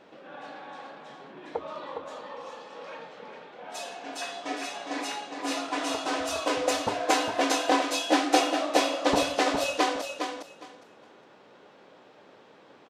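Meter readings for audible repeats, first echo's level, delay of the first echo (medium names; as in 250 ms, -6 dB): 3, -6.0 dB, 410 ms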